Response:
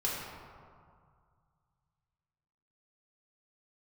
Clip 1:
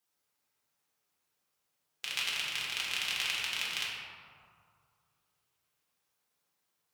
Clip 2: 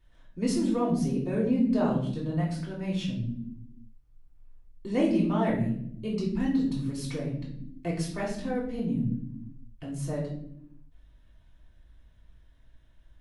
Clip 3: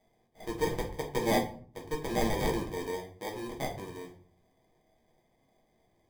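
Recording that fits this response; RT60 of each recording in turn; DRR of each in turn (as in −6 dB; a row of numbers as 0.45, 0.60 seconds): 1; 2.1 s, non-exponential decay, 0.45 s; −6.5, −6.0, −1.5 decibels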